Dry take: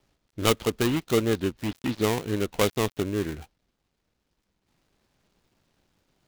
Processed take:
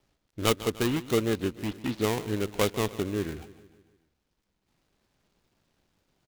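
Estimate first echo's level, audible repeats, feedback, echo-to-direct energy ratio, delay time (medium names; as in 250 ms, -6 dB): -17.0 dB, 4, 55%, -15.5 dB, 148 ms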